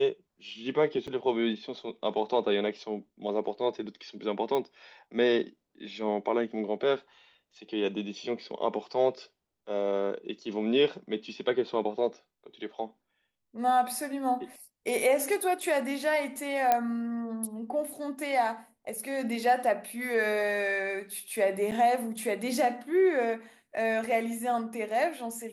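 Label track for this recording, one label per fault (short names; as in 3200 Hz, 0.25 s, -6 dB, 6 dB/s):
1.070000	1.080000	gap 6.4 ms
4.550000	4.550000	pop -18 dBFS
16.720000	16.720000	pop -11 dBFS
21.710000	21.720000	gap 7.9 ms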